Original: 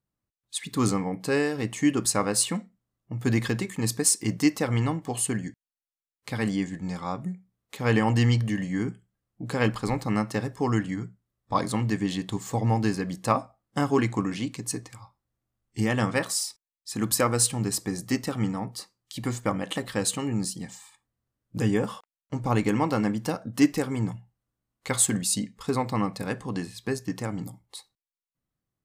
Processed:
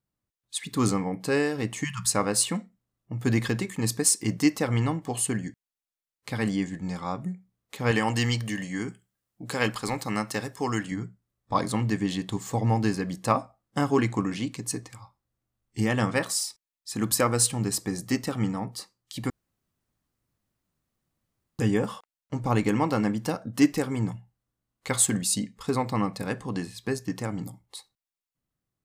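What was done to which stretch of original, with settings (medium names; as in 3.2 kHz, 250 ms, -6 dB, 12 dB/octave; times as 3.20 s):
1.84–2.11 s: spectral selection erased 200–880 Hz
7.91–10.92 s: tilt EQ +2 dB/octave
19.30–21.59 s: room tone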